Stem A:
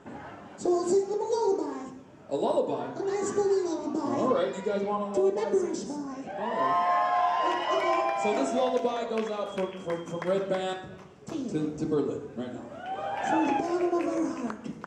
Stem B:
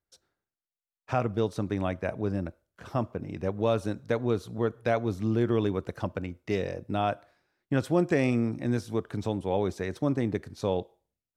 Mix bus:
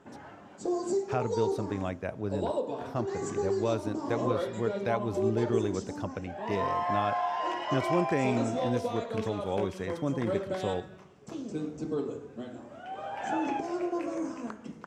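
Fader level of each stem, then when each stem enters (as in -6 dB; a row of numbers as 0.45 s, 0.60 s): -5.0 dB, -4.0 dB; 0.00 s, 0.00 s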